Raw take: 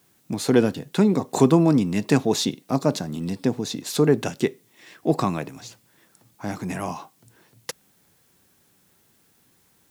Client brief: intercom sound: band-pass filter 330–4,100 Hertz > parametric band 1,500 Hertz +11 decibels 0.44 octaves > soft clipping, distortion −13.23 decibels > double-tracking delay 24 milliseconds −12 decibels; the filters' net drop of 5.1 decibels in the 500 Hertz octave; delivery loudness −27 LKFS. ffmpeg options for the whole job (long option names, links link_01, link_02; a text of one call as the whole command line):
ffmpeg -i in.wav -filter_complex "[0:a]highpass=330,lowpass=4100,equalizer=frequency=500:width_type=o:gain=-5,equalizer=frequency=1500:width_type=o:width=0.44:gain=11,asoftclip=threshold=-17.5dB,asplit=2[link_01][link_02];[link_02]adelay=24,volume=-12dB[link_03];[link_01][link_03]amix=inputs=2:normalize=0,volume=3dB" out.wav